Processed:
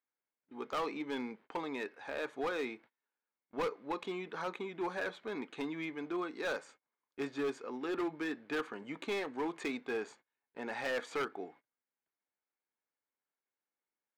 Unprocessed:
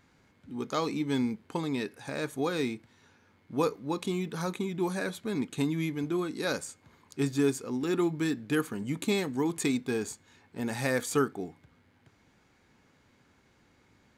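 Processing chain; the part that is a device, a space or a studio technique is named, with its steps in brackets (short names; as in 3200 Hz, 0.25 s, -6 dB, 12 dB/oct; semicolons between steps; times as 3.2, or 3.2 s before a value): walkie-talkie (BPF 490–2500 Hz; hard clip -30.5 dBFS, distortion -10 dB; gate -57 dBFS, range -29 dB)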